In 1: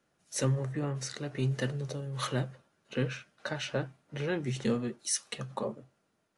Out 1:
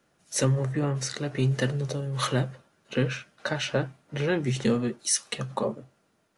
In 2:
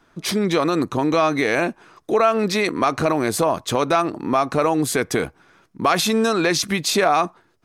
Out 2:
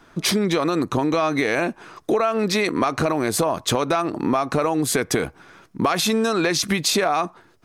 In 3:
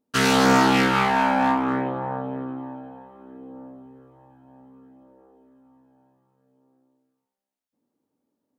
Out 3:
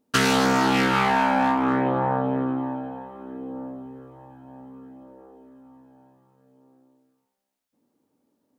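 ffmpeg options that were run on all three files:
-af "acompressor=threshold=-24dB:ratio=6,volume=6.5dB"

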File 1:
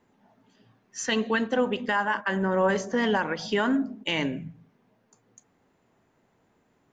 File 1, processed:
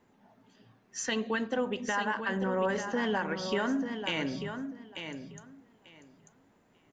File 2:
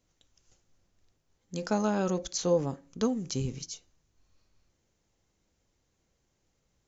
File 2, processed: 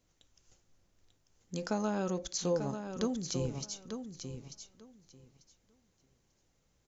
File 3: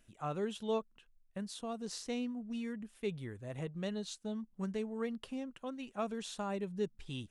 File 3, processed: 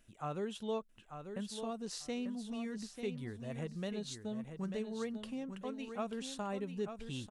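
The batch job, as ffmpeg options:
-filter_complex "[0:a]acompressor=threshold=-38dB:ratio=1.5,asplit=2[a][b];[b]aecho=0:1:892|1784|2676:0.398|0.0677|0.0115[c];[a][c]amix=inputs=2:normalize=0"

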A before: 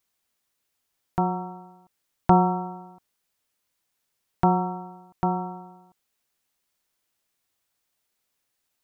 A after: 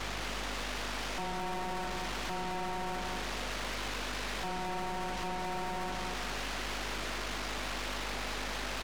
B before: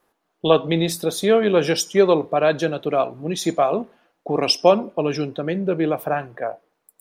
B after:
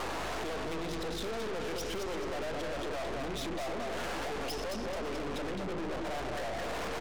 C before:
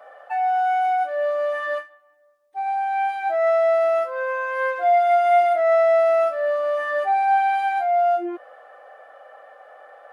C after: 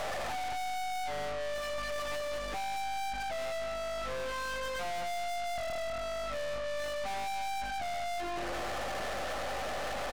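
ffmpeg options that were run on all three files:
-filter_complex "[0:a]aeval=exprs='val(0)+0.5*0.0841*sgn(val(0))':c=same,highpass=320,aemphasis=mode=reproduction:type=bsi,bandreject=f=50:t=h:w=6,bandreject=f=100:t=h:w=6,bandreject=f=150:t=h:w=6,bandreject=f=200:t=h:w=6,bandreject=f=250:t=h:w=6,bandreject=f=300:t=h:w=6,bandreject=f=350:t=h:w=6,bandreject=f=400:t=h:w=6,bandreject=f=450:t=h:w=6,bandreject=f=500:t=h:w=6,asplit=2[a][b];[b]alimiter=limit=-12.5dB:level=0:latency=1,volume=3dB[c];[a][c]amix=inputs=2:normalize=0,acompressor=threshold=-22dB:ratio=3,aeval=exprs='val(0)+0.0251*(sin(2*PI*50*n/s)+sin(2*PI*2*50*n/s)/2+sin(2*PI*3*50*n/s)/3+sin(2*PI*4*50*n/s)/4+sin(2*PI*5*50*n/s)/5)':c=same,adynamicsmooth=sensitivity=3:basefreq=3k,aecho=1:1:216|432|648|864|1080:0.596|0.214|0.0772|0.0278|0.01,aresample=16000,aresample=44100,aeval=exprs='(tanh(44.7*val(0)+0.55)-tanh(0.55))/44.7':c=same,volume=-2.5dB"

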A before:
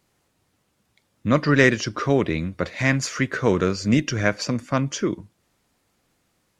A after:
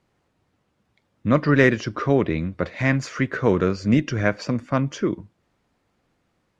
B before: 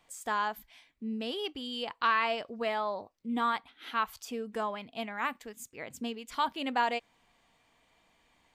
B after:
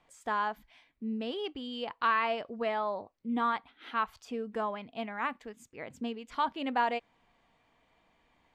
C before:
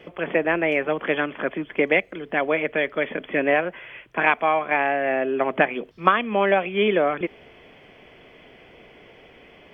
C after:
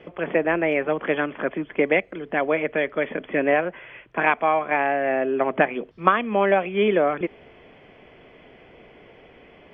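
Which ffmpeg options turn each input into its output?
-af "aemphasis=mode=reproduction:type=75fm"

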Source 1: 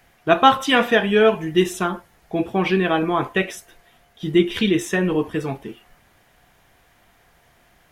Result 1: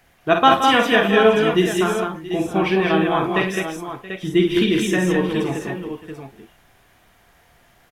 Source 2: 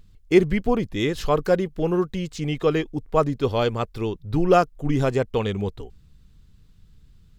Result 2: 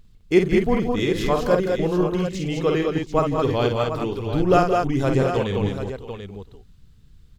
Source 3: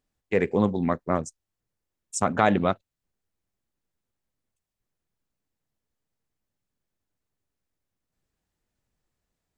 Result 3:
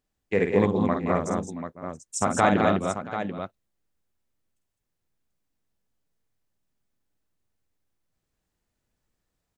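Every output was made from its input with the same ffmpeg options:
-af "aecho=1:1:50|171|208|676|739:0.501|0.299|0.631|0.126|0.335,volume=-1dB"

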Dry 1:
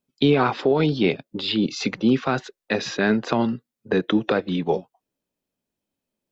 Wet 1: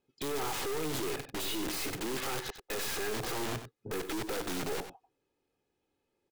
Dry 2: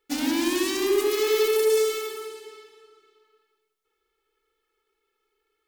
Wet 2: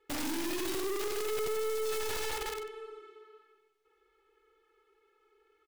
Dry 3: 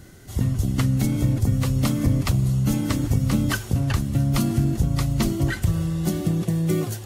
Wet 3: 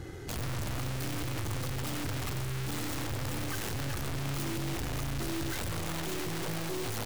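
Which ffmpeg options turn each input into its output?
-filter_complex "[0:a]lowpass=f=2.4k:p=1,lowshelf=f=65:g=-8,aecho=1:1:2.4:0.66,asplit=2[a][b];[b]alimiter=limit=-15dB:level=0:latency=1:release=155,volume=0.5dB[c];[a][c]amix=inputs=2:normalize=0,aeval=exprs='(tanh(20*val(0)+0.5)-tanh(0.5))/20':c=same,aeval=exprs='(mod(33.5*val(0)+1,2)-1)/33.5':c=same,asplit=2[d][e];[e]aecho=0:1:94:0.299[f];[d][f]amix=inputs=2:normalize=0"

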